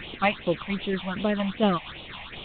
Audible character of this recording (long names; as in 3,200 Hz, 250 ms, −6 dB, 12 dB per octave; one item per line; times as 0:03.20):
a quantiser's noise floor 6 bits, dither triangular
phaser sweep stages 6, 2.6 Hz, lowest notch 370–1,700 Hz
tremolo saw down 4.3 Hz, depth 40%
G.726